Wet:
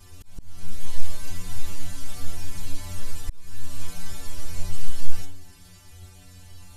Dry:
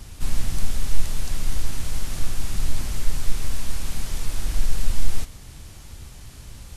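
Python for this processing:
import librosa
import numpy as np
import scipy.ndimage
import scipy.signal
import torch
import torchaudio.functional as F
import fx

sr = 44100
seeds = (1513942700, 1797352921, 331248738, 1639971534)

y = fx.stiff_resonator(x, sr, f0_hz=88.0, decay_s=0.67, stiffness=0.008)
y = fx.auto_swell(y, sr, attack_ms=507.0)
y = y * librosa.db_to_amplitude(7.5)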